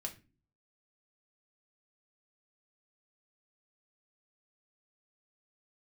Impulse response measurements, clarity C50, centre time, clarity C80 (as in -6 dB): 14.5 dB, 9 ms, 20.0 dB